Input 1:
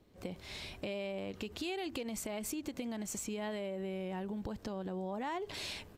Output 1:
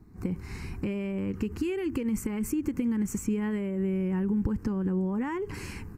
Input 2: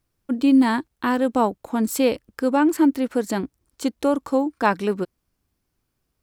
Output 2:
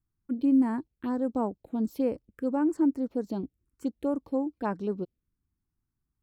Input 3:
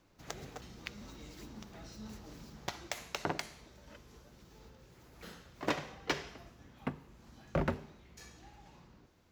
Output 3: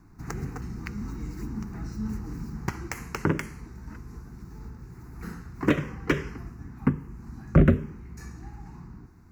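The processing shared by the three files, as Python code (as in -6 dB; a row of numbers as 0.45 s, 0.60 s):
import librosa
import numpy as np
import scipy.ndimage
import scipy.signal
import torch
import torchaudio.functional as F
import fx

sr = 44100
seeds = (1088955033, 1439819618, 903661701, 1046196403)

y = fx.env_phaser(x, sr, low_hz=550.0, high_hz=3700.0, full_db=-15.5)
y = fx.tilt_shelf(y, sr, db=6.0, hz=800.0)
y = y * 10.0 ** (-30 / 20.0) / np.sqrt(np.mean(np.square(y)))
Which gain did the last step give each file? +9.5 dB, -11.5 dB, +12.5 dB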